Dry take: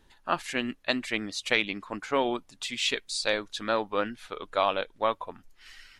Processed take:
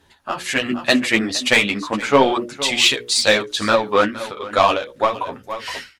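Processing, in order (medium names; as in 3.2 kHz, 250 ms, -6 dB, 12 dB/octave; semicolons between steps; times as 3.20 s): high-pass 42 Hz 24 dB/octave; in parallel at -4.5 dB: saturation -26.5 dBFS, distortion -7 dB; on the sum: hum notches 60/120/180/240/300/360/420/480/540/600 Hz; sine folder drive 4 dB, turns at -7 dBFS; chorus voices 4, 1.2 Hz, delay 11 ms, depth 3.6 ms; 4.10–4.51 s: compression 6:1, threshold -33 dBFS, peak gain reduction 8.5 dB; on a send: delay 466 ms -16 dB; on the sum: level rider gain up to 16 dB; endings held to a fixed fall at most 160 dB/s; trim -1 dB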